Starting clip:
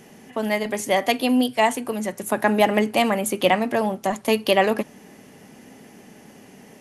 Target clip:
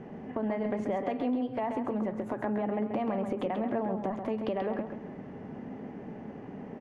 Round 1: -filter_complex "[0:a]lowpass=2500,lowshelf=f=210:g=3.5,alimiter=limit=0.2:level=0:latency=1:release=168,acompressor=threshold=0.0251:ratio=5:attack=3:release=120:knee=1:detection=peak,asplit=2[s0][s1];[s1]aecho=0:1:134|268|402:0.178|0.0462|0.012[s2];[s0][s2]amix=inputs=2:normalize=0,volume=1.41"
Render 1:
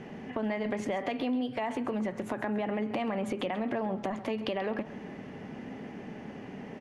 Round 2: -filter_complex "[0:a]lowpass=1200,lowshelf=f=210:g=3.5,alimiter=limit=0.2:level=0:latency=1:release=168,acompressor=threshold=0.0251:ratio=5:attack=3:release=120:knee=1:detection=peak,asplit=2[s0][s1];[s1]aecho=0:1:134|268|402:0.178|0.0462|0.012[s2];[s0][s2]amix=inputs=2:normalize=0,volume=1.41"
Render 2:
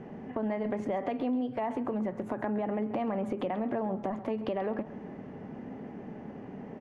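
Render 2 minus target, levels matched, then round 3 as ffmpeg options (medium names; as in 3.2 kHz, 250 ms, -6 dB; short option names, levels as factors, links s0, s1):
echo-to-direct -8 dB
-filter_complex "[0:a]lowpass=1200,lowshelf=f=210:g=3.5,alimiter=limit=0.2:level=0:latency=1:release=168,acompressor=threshold=0.0251:ratio=5:attack=3:release=120:knee=1:detection=peak,asplit=2[s0][s1];[s1]aecho=0:1:134|268|402:0.447|0.116|0.0302[s2];[s0][s2]amix=inputs=2:normalize=0,volume=1.41"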